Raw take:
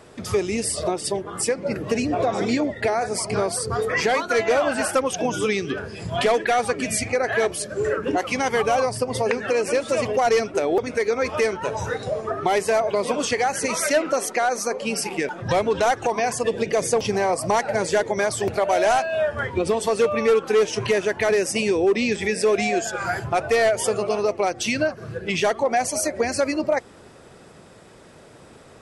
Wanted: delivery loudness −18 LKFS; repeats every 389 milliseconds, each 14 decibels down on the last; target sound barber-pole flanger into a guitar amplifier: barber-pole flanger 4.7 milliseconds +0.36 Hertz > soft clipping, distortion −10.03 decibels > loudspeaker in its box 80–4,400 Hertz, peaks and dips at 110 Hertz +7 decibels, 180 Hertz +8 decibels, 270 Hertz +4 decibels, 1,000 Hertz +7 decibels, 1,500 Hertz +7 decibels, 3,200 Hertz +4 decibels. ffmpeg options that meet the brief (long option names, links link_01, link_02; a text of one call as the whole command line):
ffmpeg -i in.wav -filter_complex "[0:a]aecho=1:1:389|778:0.2|0.0399,asplit=2[link_01][link_02];[link_02]adelay=4.7,afreqshift=0.36[link_03];[link_01][link_03]amix=inputs=2:normalize=1,asoftclip=threshold=-23dB,highpass=80,equalizer=frequency=110:width_type=q:width=4:gain=7,equalizer=frequency=180:width_type=q:width=4:gain=8,equalizer=frequency=270:width_type=q:width=4:gain=4,equalizer=frequency=1000:width_type=q:width=4:gain=7,equalizer=frequency=1500:width_type=q:width=4:gain=7,equalizer=frequency=3200:width_type=q:width=4:gain=4,lowpass=frequency=4400:width=0.5412,lowpass=frequency=4400:width=1.3066,volume=9dB" out.wav